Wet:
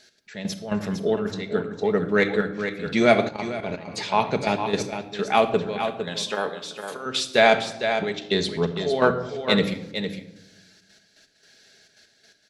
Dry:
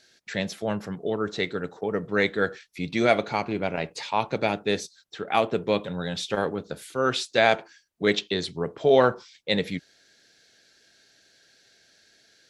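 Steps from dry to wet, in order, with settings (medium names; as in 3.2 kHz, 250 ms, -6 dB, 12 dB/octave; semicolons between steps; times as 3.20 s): trance gate "x.x..x..xxxx" 168 bpm -12 dB; simulated room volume 3500 m³, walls furnished, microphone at 1.4 m; in parallel at -11 dB: saturation -20 dBFS, distortion -9 dB; 5.85–7.06 s: on the sum: high-pass 730 Hz 6 dB/octave; on a send: delay 457 ms -8 dB; 3.28–3.88 s: on the sum: level held to a coarse grid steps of 10 dB; trim +1.5 dB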